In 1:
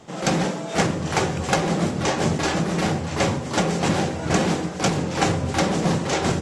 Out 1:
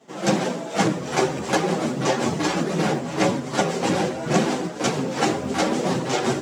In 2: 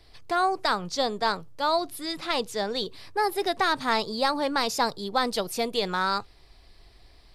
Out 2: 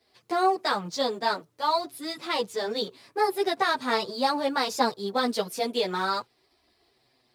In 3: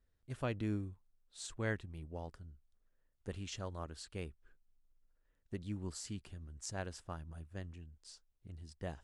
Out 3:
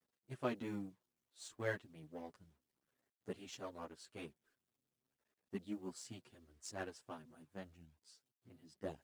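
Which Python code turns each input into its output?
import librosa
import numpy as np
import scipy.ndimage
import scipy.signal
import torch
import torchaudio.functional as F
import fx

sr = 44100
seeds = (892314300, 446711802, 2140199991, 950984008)

y = fx.law_mismatch(x, sr, coded='A')
y = scipy.signal.sosfilt(scipy.signal.butter(2, 220.0, 'highpass', fs=sr, output='sos'), y)
y = fx.low_shelf(y, sr, hz=470.0, db=5.5)
y = fx.chorus_voices(y, sr, voices=4, hz=0.43, base_ms=12, depth_ms=4.3, mix_pct=60)
y = y * 10.0 ** (2.0 / 20.0)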